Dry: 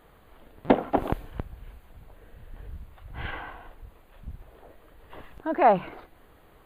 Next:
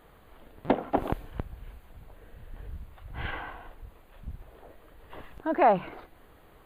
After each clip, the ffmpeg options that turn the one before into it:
-af "alimiter=limit=0.299:level=0:latency=1:release=389"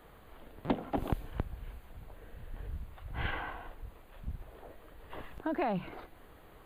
-filter_complex "[0:a]acrossover=split=250|3000[s0][s1][s2];[s1]acompressor=threshold=0.02:ratio=4[s3];[s0][s3][s2]amix=inputs=3:normalize=0"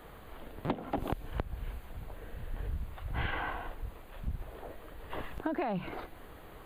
-af "acompressor=threshold=0.0178:ratio=6,volume=1.88"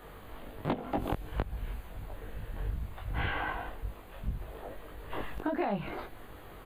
-filter_complex "[0:a]asplit=2[s0][s1];[s1]adelay=20,volume=0.708[s2];[s0][s2]amix=inputs=2:normalize=0"

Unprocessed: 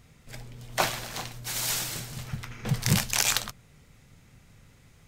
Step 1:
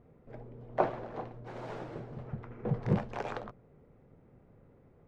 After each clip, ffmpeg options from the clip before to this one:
-af "lowpass=1200,equalizer=f=430:w=0.68:g=14,volume=0.376"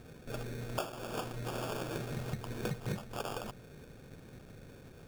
-af "acompressor=threshold=0.00794:ratio=10,acrusher=samples=22:mix=1:aa=0.000001,volume=2.51"

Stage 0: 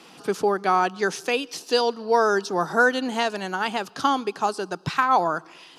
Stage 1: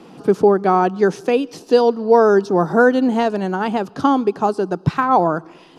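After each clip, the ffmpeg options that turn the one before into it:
-af "tiltshelf=f=970:g=9.5,volume=1.5"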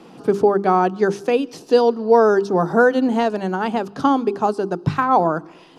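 -af "bandreject=f=50:t=h:w=6,bandreject=f=100:t=h:w=6,bandreject=f=150:t=h:w=6,bandreject=f=200:t=h:w=6,bandreject=f=250:t=h:w=6,bandreject=f=300:t=h:w=6,bandreject=f=350:t=h:w=6,bandreject=f=400:t=h:w=6,volume=0.891"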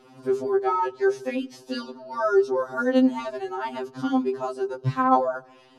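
-af "afftfilt=real='re*2.45*eq(mod(b,6),0)':imag='im*2.45*eq(mod(b,6),0)':win_size=2048:overlap=0.75,volume=0.596"

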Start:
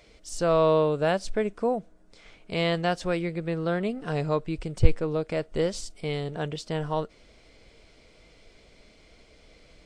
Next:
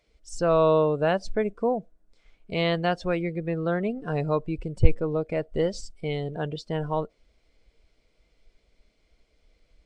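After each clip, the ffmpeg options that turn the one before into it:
-af "afftdn=nr=15:nf=-38,volume=1.12"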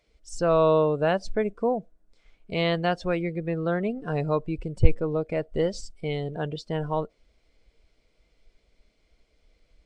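-af anull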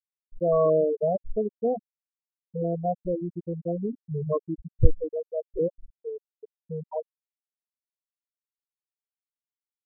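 -af "afftfilt=real='re*gte(hypot(re,im),0.316)':imag='im*gte(hypot(re,im),0.316)':win_size=1024:overlap=0.75"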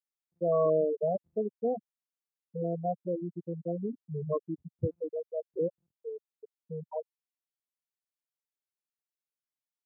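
-af "highpass=f=130:w=0.5412,highpass=f=130:w=1.3066,volume=0.596"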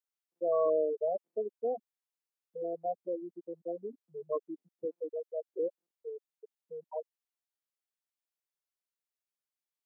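-af "highpass=f=320:w=0.5412,highpass=f=320:w=1.3066,volume=0.794"

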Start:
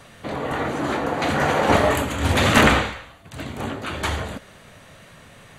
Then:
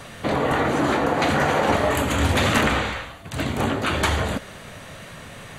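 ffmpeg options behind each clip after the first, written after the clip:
-af "acompressor=threshold=0.0631:ratio=6,volume=2.24"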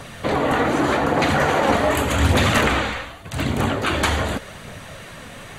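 -af "aphaser=in_gain=1:out_gain=1:delay=4.3:decay=0.29:speed=0.85:type=triangular,volume=1.19"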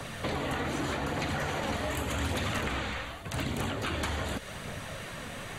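-filter_complex "[0:a]acrossover=split=91|190|2200[s0][s1][s2][s3];[s0]acompressor=threshold=0.0126:ratio=4[s4];[s1]acompressor=threshold=0.0126:ratio=4[s5];[s2]acompressor=threshold=0.0224:ratio=4[s6];[s3]acompressor=threshold=0.0141:ratio=4[s7];[s4][s5][s6][s7]amix=inputs=4:normalize=0,volume=0.75"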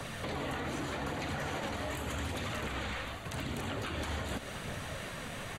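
-af "alimiter=level_in=1.26:limit=0.0631:level=0:latency=1:release=116,volume=0.794,aecho=1:1:707:0.266,volume=0.841"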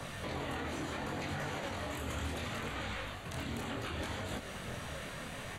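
-af "flanger=delay=20:depth=5.9:speed=0.69,volume=1.12"

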